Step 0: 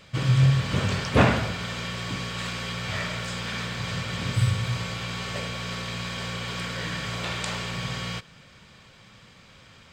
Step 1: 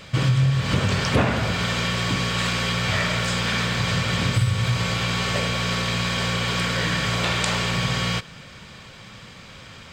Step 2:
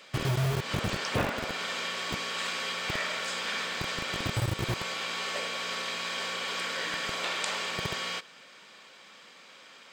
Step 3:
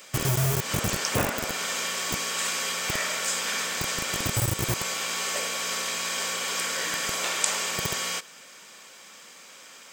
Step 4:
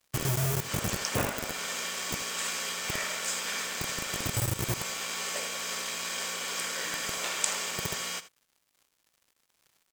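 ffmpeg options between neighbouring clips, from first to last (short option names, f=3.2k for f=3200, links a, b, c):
-af "acompressor=threshold=-27dB:ratio=4,volume=9dB"
-filter_complex "[0:a]lowshelf=f=360:g=-4,acrossover=split=240|1400[a][b][c];[a]acrusher=bits=3:mix=0:aa=0.000001[d];[d][b][c]amix=inputs=3:normalize=0,volume=-7.5dB"
-af "aexciter=amount=5.1:drive=3:freq=5.7k,volume=2.5dB"
-af "aeval=exprs='sgn(val(0))*max(abs(val(0))-0.00841,0)':c=same,aecho=1:1:80:0.168,volume=-3dB"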